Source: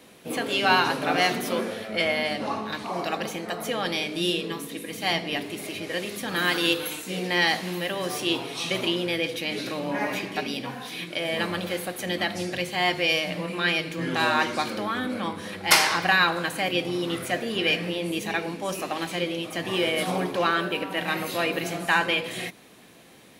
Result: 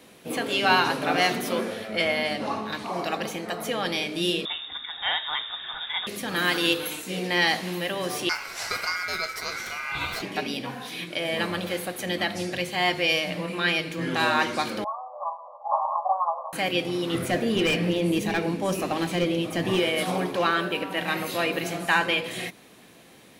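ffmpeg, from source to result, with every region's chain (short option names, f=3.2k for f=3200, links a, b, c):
-filter_complex "[0:a]asettb=1/sr,asplit=3[a][b][c];[a]atrim=end=4.454[d];[b]atrim=start=4.45:end=6.07,asetpts=PTS-STARTPTS,afade=t=in:d=0.004:c=qsin,afade=t=out:st=1.616:d=0.004:c=qsin,asoftclip=type=hard:threshold=-16.5dB,lowpass=f=3.3k:t=q:w=0.5098,lowpass=f=3.3k:t=q:w=0.6013,lowpass=f=3.3k:t=q:w=0.9,lowpass=f=3.3k:t=q:w=2.563,afreqshift=-3900[e];[c]atrim=start=6.066[f];[d][e]acrossfade=d=0.004:c1=hsin:c2=qsin[g];[g][f]acrossfade=d=0.004:c1=qsin:c2=hsin,asettb=1/sr,asplit=3[h][i][j];[h]atrim=end=8.294[k];[i]atrim=start=8.29:end=10.22,asetpts=PTS-STARTPTS,afade=t=in:d=0.004:c=qsin,afade=t=out:st=1.926:d=0.004:c=qsin,highshelf=f=11k:g=9.5,aeval=exprs='val(0)*sin(2*PI*1800*n/s)':c=same[l];[j]atrim=start=10.216[m];[k][l]acrossfade=d=0.004:c1=hsin:c2=qsin[n];[n][m]acrossfade=d=0.004:c1=qsin:c2=hsin,asettb=1/sr,asplit=3[o][p][q];[o]atrim=end=14.844[r];[p]atrim=start=14.84:end=16.53,asetpts=PTS-STARTPTS,afade=t=in:d=0.004:c=qsin,afade=t=out:st=1.686:d=0.004:c=qsin,asuperpass=centerf=810:order=20:qfactor=1.3,asplit=2[s][t];[t]adelay=12,volume=-2.5dB[u];[s][u]amix=inputs=2:normalize=0,atrim=end_sample=74529[v];[q]atrim=start=16.526[w];[r][v]acrossfade=d=0.004:c1=hsin:c2=qsin[x];[x][w]acrossfade=d=0.004:c1=qsin:c2=hsin,asettb=1/sr,asplit=3[y][z][aa];[y]atrim=end=17.144[ab];[z]atrim=start=17.14:end=19.8,asetpts=PTS-STARTPTS,afade=t=in:d=0.004:c=qsin,afade=t=out:st=2.656:d=0.004:c=qsin,volume=21dB,asoftclip=hard,volume=-21dB,lowshelf=f=460:g=8.5[ac];[aa]atrim=start=19.796[ad];[ab][ac]acrossfade=d=0.004:c1=hsin:c2=qsin[ae];[ae][ad]acrossfade=d=0.004:c1=qsin:c2=hsin"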